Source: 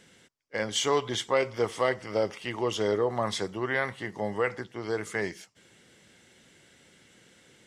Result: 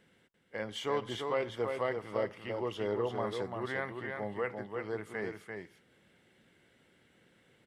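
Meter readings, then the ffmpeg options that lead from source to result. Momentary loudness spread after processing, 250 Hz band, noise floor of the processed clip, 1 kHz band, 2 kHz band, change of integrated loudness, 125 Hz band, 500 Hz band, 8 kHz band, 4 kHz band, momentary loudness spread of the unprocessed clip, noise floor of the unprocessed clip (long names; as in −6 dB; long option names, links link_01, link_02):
8 LU, −6.0 dB, −68 dBFS, −6.5 dB, −7.5 dB, −7.0 dB, −5.5 dB, −6.0 dB, below −15 dB, −11.0 dB, 7 LU, −60 dBFS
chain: -af "equalizer=frequency=6500:width_type=o:width=1.3:gain=-14,aecho=1:1:342:0.562,volume=-7dB"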